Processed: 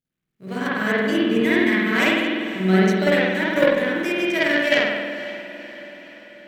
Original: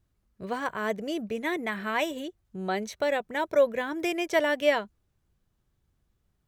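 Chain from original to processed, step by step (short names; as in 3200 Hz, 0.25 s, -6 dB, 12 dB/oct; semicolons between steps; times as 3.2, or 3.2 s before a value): G.711 law mismatch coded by A; notches 60/120/180/240/300/360/420/480/540 Hz; spring tank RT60 1.6 s, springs 48 ms, chirp 60 ms, DRR -8 dB; added harmonics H 3 -15 dB, 4 -31 dB, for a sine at -5.5 dBFS; EQ curve 400 Hz 0 dB, 890 Hz -10 dB, 1800 Hz +2 dB; AGC gain up to 11 dB; resonant low shelf 110 Hz -9.5 dB, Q 3; diffused feedback echo 0.51 s, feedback 56%, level -15 dB; gain -1 dB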